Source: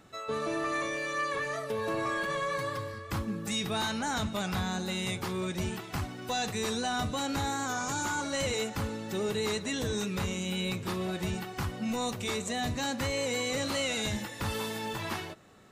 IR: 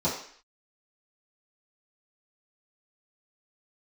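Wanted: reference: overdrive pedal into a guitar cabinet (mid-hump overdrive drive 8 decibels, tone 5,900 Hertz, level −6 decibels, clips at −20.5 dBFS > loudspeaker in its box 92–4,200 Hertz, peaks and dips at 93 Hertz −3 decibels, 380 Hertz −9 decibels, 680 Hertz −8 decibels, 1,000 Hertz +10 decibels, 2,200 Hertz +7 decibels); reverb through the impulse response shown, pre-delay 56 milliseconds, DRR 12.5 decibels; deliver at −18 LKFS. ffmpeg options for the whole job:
-filter_complex "[0:a]asplit=2[link_01][link_02];[1:a]atrim=start_sample=2205,adelay=56[link_03];[link_02][link_03]afir=irnorm=-1:irlink=0,volume=-23.5dB[link_04];[link_01][link_04]amix=inputs=2:normalize=0,asplit=2[link_05][link_06];[link_06]highpass=frequency=720:poles=1,volume=8dB,asoftclip=type=tanh:threshold=-20.5dB[link_07];[link_05][link_07]amix=inputs=2:normalize=0,lowpass=frequency=5900:poles=1,volume=-6dB,highpass=92,equalizer=frequency=93:width_type=q:width=4:gain=-3,equalizer=frequency=380:width_type=q:width=4:gain=-9,equalizer=frequency=680:width_type=q:width=4:gain=-8,equalizer=frequency=1000:width_type=q:width=4:gain=10,equalizer=frequency=2200:width_type=q:width=4:gain=7,lowpass=frequency=4200:width=0.5412,lowpass=frequency=4200:width=1.3066,volume=12dB"

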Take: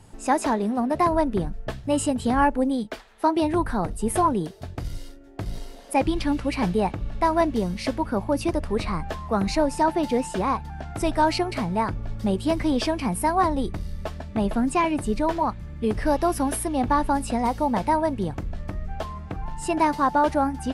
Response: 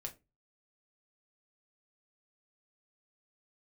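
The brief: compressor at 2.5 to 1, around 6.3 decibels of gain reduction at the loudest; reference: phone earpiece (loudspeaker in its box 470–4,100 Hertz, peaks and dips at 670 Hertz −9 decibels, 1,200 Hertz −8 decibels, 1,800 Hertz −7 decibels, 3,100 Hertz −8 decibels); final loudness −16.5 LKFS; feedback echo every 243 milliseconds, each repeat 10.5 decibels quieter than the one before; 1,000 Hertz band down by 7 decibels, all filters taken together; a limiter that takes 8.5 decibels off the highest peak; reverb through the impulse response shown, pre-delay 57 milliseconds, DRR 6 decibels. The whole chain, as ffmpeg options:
-filter_complex "[0:a]equalizer=frequency=1000:width_type=o:gain=-3,acompressor=threshold=-27dB:ratio=2.5,alimiter=limit=-23.5dB:level=0:latency=1,aecho=1:1:243|486|729:0.299|0.0896|0.0269,asplit=2[link_01][link_02];[1:a]atrim=start_sample=2205,adelay=57[link_03];[link_02][link_03]afir=irnorm=-1:irlink=0,volume=-3dB[link_04];[link_01][link_04]amix=inputs=2:normalize=0,highpass=470,equalizer=frequency=670:width_type=q:width=4:gain=-9,equalizer=frequency=1200:width_type=q:width=4:gain=-8,equalizer=frequency=1800:width_type=q:width=4:gain=-7,equalizer=frequency=3100:width_type=q:width=4:gain=-8,lowpass=frequency=4100:width=0.5412,lowpass=frequency=4100:width=1.3066,volume=23.5dB"

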